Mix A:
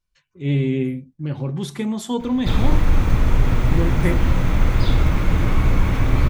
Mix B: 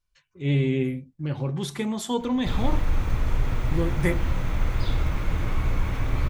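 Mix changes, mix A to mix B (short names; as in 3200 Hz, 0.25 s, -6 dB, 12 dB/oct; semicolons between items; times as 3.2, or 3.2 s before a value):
background -7.0 dB; master: add bell 220 Hz -4.5 dB 1.5 oct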